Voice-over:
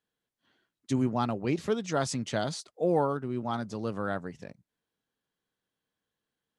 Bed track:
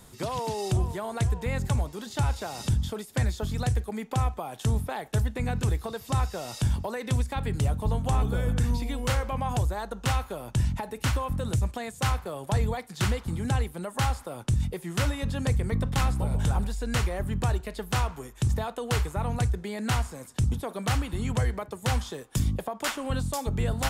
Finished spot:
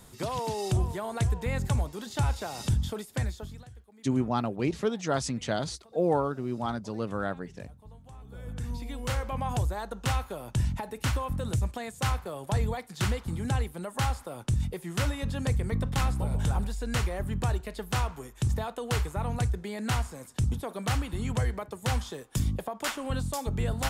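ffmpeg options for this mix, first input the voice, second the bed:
-filter_complex "[0:a]adelay=3150,volume=0.5dB[a];[1:a]volume=20.5dB,afade=t=out:st=2.99:d=0.67:silence=0.0749894,afade=t=in:st=8.23:d=1.18:silence=0.0841395[b];[a][b]amix=inputs=2:normalize=0"

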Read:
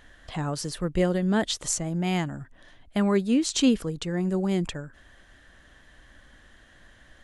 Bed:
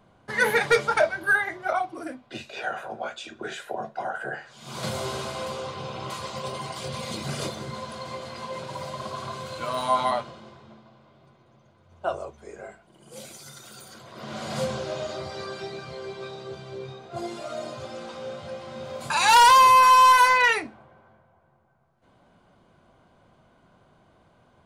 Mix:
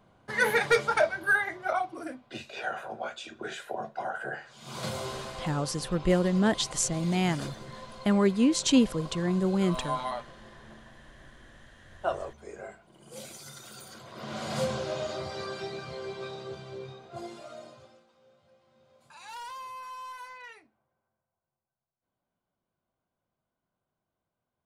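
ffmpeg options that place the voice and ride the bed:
-filter_complex "[0:a]adelay=5100,volume=-0.5dB[a];[1:a]volume=4.5dB,afade=t=out:st=4.74:d=0.78:silence=0.501187,afade=t=in:st=10.25:d=0.5:silence=0.421697,afade=t=out:st=16.35:d=1.7:silence=0.0530884[b];[a][b]amix=inputs=2:normalize=0"

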